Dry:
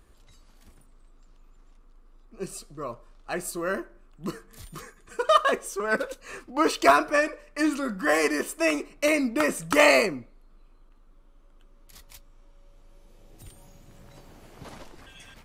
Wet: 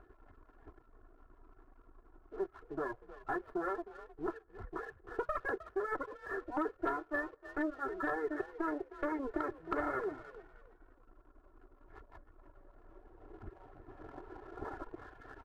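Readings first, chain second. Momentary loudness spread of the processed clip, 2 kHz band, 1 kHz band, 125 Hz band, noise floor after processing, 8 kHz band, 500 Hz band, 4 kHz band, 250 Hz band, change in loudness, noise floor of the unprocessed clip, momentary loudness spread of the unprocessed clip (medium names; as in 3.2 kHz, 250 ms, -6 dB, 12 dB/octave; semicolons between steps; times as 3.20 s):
17 LU, -15.0 dB, -12.5 dB, -11.0 dB, -65 dBFS, under -35 dB, -13.5 dB, under -30 dB, -11.0 dB, -15.0 dB, -55 dBFS, 20 LU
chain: comb filter that takes the minimum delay 2.3 ms; reverb removal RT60 0.78 s; elliptic low-pass 1.6 kHz, stop band 50 dB; bass shelf 100 Hz -11 dB; comb 2.9 ms, depth 72%; compression 6:1, threshold -40 dBFS, peak gain reduction 23 dB; frequency-shifting echo 310 ms, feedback 32%, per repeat +38 Hz, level -15 dB; waveshaping leveller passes 1; trim +2 dB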